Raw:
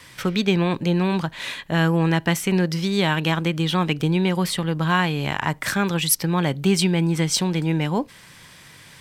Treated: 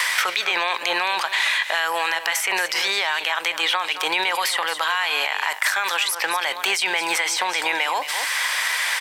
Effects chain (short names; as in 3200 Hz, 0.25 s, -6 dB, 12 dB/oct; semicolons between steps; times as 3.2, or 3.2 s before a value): HPF 720 Hz 24 dB/oct; bell 2000 Hz +4 dB 0.44 oct; in parallel at 0 dB: negative-ratio compressor -37 dBFS, ratio -1; on the sum: limiter -14.5 dBFS, peak gain reduction 10 dB; on a send: echo 0.219 s -13 dB; on the sum: three-band squash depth 100%; gain +3.5 dB